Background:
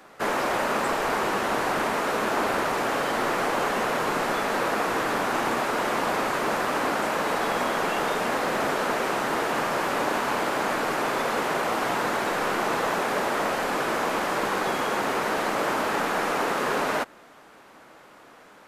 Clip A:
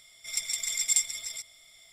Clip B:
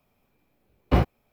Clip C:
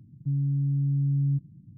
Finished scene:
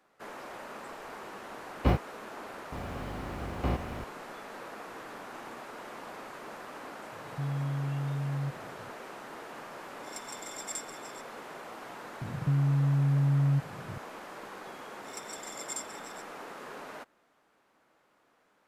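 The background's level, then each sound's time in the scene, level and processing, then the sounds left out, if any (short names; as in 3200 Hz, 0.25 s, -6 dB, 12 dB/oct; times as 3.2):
background -18.5 dB
0.93 add B -5 dB
2.72 add B -13 dB + per-bin compression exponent 0.2
7.12 add C -5 dB + limiter -23.5 dBFS
9.79 add A -14 dB
12.21 add C -0.5 dB + three-band squash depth 70%
14.8 add A -11 dB + tape flanging out of phase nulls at 1.8 Hz, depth 4.9 ms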